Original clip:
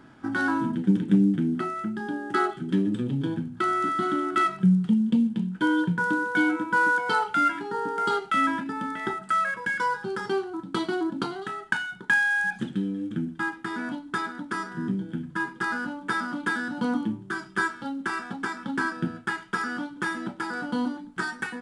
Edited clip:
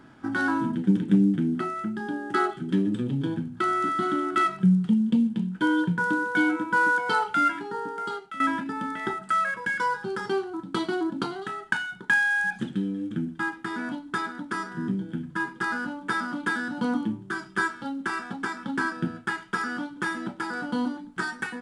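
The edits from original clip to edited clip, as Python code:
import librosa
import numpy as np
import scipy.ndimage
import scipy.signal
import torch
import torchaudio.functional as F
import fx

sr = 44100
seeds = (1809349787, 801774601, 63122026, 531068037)

y = fx.edit(x, sr, fx.fade_out_to(start_s=7.48, length_s=0.92, floor_db=-15.5), tone=tone)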